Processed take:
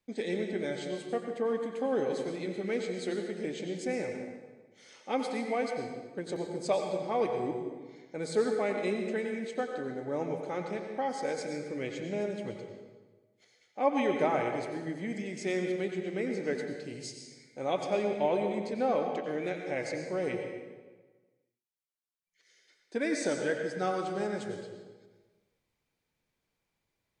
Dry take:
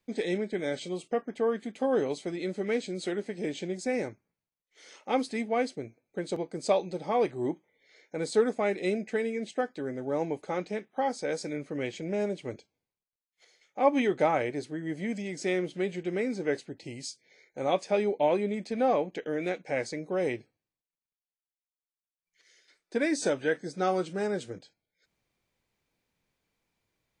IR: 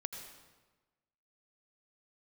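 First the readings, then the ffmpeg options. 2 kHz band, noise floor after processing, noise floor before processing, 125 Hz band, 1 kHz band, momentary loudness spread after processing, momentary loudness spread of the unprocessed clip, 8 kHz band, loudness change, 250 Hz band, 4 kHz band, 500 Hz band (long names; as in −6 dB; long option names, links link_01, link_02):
−2.0 dB, −83 dBFS, below −85 dBFS, −2.0 dB, −2.5 dB, 12 LU, 10 LU, −2.5 dB, −2.5 dB, −2.5 dB, −2.5 dB, −2.0 dB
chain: -filter_complex "[1:a]atrim=start_sample=2205,asetrate=39690,aresample=44100[link_01];[0:a][link_01]afir=irnorm=-1:irlink=0,volume=-2dB"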